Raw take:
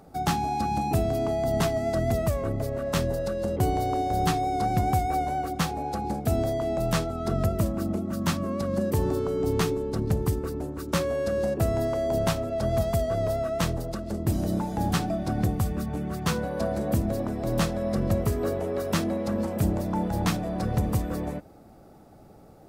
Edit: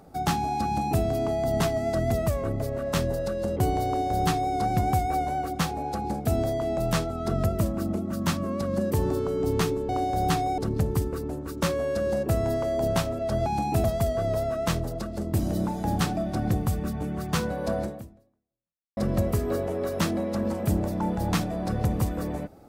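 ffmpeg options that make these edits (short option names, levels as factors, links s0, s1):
-filter_complex "[0:a]asplit=6[s0][s1][s2][s3][s4][s5];[s0]atrim=end=9.892[s6];[s1]atrim=start=3.858:end=4.552[s7];[s2]atrim=start=9.888:end=12.772[s8];[s3]atrim=start=0.648:end=1.032[s9];[s4]atrim=start=12.768:end=17.9,asetpts=PTS-STARTPTS,afade=t=out:st=3.992:d=1.14:c=exp[s10];[s5]atrim=start=17.9,asetpts=PTS-STARTPTS,afade=t=in:d=0.004:c=hsin[s11];[s6][s7]acrossfade=d=0.004:c1=hsin:c2=hsin[s12];[s12][s8]acrossfade=d=0.004:c1=hsin:c2=hsin[s13];[s13][s9]acrossfade=d=0.004:c1=hsin:c2=hsin[s14];[s10][s11]concat=n=2:v=0:a=1[s15];[s14][s15]acrossfade=d=0.004:c1=hsin:c2=hsin"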